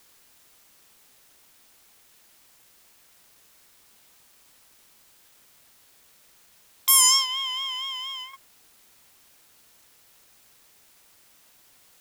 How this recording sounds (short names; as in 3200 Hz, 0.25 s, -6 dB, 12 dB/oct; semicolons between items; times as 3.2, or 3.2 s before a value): tremolo saw down 0.6 Hz, depth 75%; a quantiser's noise floor 10-bit, dither triangular